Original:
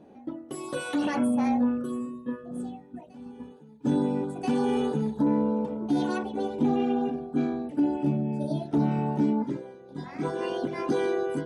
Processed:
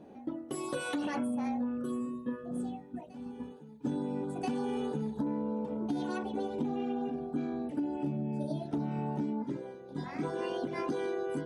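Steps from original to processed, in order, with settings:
downward compressor, threshold −31 dBFS, peak gain reduction 11 dB

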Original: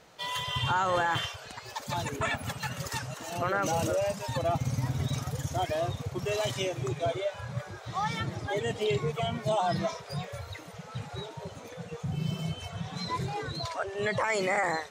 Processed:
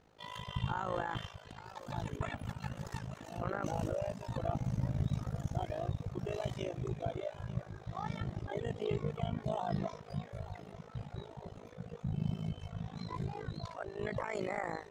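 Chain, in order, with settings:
spectral tilt −2.5 dB per octave
feedback echo with a high-pass in the loop 890 ms, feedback 61%, high-pass 180 Hz, level −15.5 dB
amplitude modulation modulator 53 Hz, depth 80%
level −7 dB

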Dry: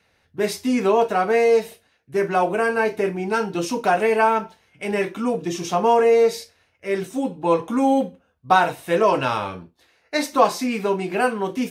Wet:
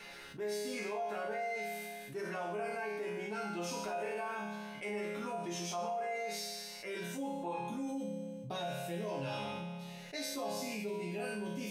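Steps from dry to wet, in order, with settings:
parametric band 120 Hz −13 dB 1.2 octaves, from 0:07.58 1,200 Hz
brickwall limiter −14.5 dBFS, peak gain reduction 8.5 dB
resonators tuned to a chord C#3 major, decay 0.83 s
envelope flattener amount 70%
level +1 dB

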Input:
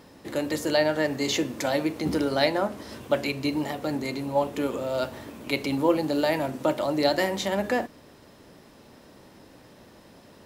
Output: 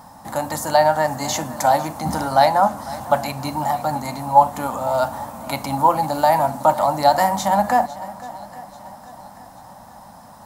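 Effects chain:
drawn EQ curve 220 Hz 0 dB, 400 Hz −19 dB, 800 Hz +13 dB, 2,600 Hz −11 dB, 8,600 Hz +5 dB
feedback echo with a long and a short gap by turns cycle 837 ms, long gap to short 1.5 to 1, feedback 40%, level −18 dB
level +6 dB

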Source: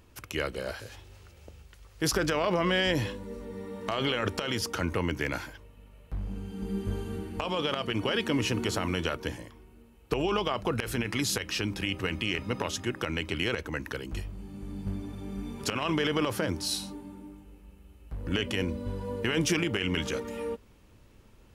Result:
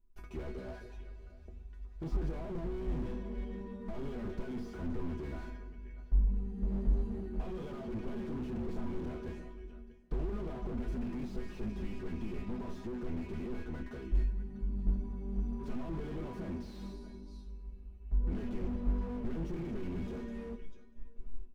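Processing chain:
noise gate with hold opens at −46 dBFS
spectral tilt −4.5 dB per octave
mains-hum notches 60/120/180/240 Hz
comb filter 4.9 ms, depth 69%
dynamic equaliser 5,400 Hz, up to +7 dB, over −52 dBFS, Q 0.87
resonators tuned to a chord B3 sus4, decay 0.21 s
single-tap delay 642 ms −23.5 dB
dense smooth reverb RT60 1.5 s, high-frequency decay 1×, DRR 13.5 dB
slew-rate limiting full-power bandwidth 2.2 Hz
level +5.5 dB

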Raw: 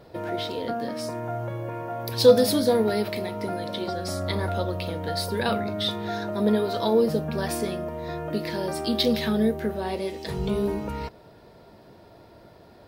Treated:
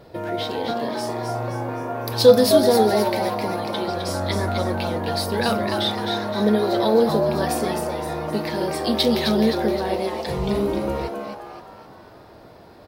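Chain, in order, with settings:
echo with shifted repeats 260 ms, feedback 46%, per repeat +140 Hz, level −5.5 dB
level +3 dB

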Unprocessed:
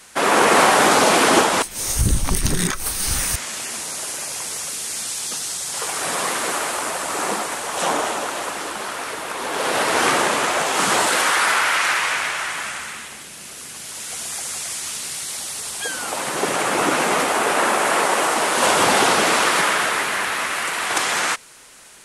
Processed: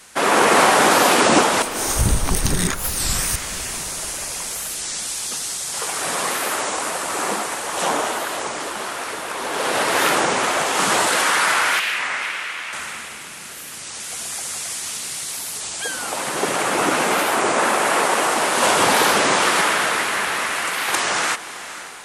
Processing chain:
0:11.80–0:12.73: resonant band-pass 2,500 Hz, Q 1.5
on a send: feedback delay with all-pass diffusion 524 ms, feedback 49%, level −13.5 dB
on the sum: wow of a warped record 33 1/3 rpm, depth 250 cents

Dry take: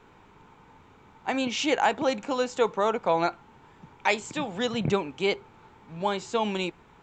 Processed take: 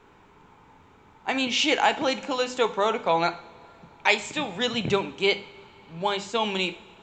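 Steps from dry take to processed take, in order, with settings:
mains-hum notches 50/100/150/200/250 Hz
dynamic equaliser 3,300 Hz, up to +7 dB, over −43 dBFS, Q 0.8
coupled-rooms reverb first 0.5 s, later 3 s, from −18 dB, DRR 10.5 dB

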